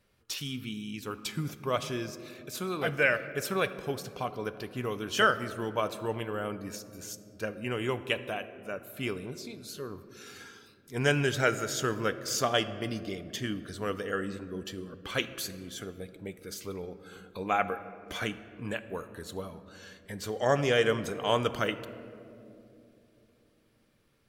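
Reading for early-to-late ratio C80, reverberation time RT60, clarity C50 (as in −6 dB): 14.0 dB, 2.9 s, 13.0 dB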